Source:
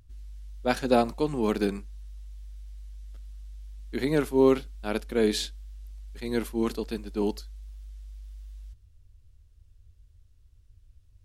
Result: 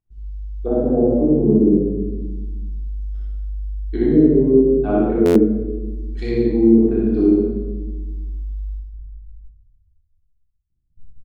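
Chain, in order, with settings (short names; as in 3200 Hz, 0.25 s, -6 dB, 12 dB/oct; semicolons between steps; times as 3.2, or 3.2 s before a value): formant sharpening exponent 1.5; treble ducked by the level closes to 420 Hz, closed at -24.5 dBFS; spectral noise reduction 8 dB; treble ducked by the level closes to 580 Hz, closed at -25.5 dBFS; bell 91 Hz -5 dB 2 oct; in parallel at -1 dB: compressor, threshold -39 dBFS, peak gain reduction 18.5 dB; on the sum: gate -51 dBFS, range -31 dB; on a send: loudspeakers at several distances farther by 21 m -1 dB, 63 m -9 dB; on the sum: shoebox room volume 640 m³, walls mixed, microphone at 3.5 m; stuck buffer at 5.25, samples 512, times 8; gain +1.5 dB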